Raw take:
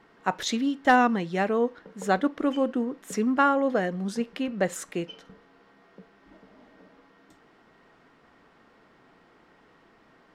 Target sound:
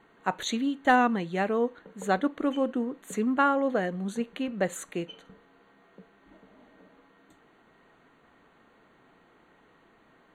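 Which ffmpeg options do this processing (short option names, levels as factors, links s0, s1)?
-af "asuperstop=centerf=5200:order=12:qfactor=3.7,volume=0.794"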